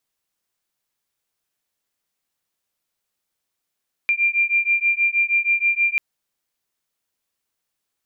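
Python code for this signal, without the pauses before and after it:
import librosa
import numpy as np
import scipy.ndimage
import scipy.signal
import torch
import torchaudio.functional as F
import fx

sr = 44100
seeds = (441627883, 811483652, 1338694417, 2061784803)

y = fx.two_tone_beats(sr, length_s=1.89, hz=2380.0, beat_hz=6.3, level_db=-19.5)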